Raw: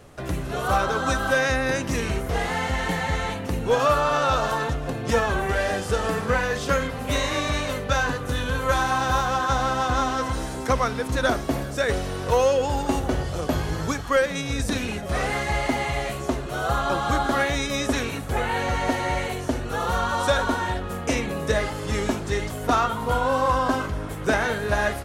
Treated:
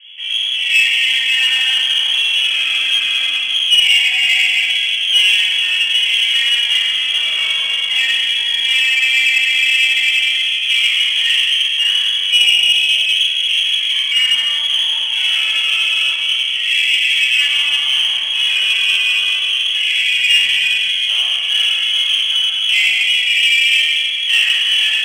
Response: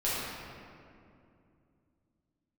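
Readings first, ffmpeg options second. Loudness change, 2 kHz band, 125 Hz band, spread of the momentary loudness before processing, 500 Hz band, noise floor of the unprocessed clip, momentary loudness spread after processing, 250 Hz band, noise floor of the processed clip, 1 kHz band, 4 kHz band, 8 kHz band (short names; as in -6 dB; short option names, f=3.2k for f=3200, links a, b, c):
+12.5 dB, +13.0 dB, under -30 dB, 6 LU, under -25 dB, -32 dBFS, 4 LU, under -25 dB, -19 dBFS, -16.5 dB, +25.0 dB, +7.0 dB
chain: -filter_complex "[0:a]lowpass=f=2.9k:t=q:w=0.5098,lowpass=f=2.9k:t=q:w=0.6013,lowpass=f=2.9k:t=q:w=0.9,lowpass=f=2.9k:t=q:w=2.563,afreqshift=-3400[a];[1:a]atrim=start_sample=2205[b];[a][b]afir=irnorm=-1:irlink=0,aexciter=amount=7.3:drive=7.7:freq=2.1k,volume=-14.5dB"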